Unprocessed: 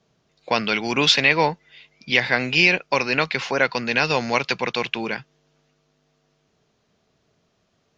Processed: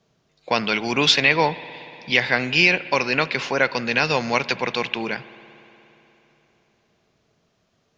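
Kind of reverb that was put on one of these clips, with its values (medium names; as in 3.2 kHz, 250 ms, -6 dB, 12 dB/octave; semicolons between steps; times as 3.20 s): spring tank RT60 3.5 s, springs 59 ms, chirp 35 ms, DRR 16 dB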